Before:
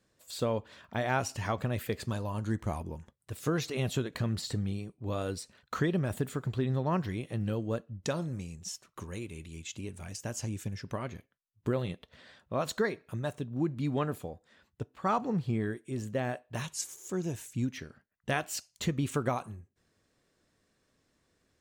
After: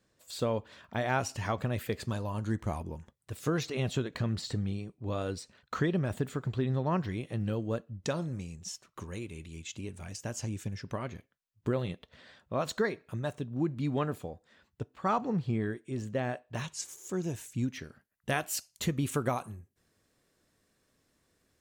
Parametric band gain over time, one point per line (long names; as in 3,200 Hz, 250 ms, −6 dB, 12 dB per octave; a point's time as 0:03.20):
parametric band 12,000 Hz 0.67 octaves
−3 dB
from 0:03.63 −12 dB
from 0:07.12 −5.5 dB
from 0:15.13 −12 dB
from 0:16.88 −1 dB
from 0:17.84 +9 dB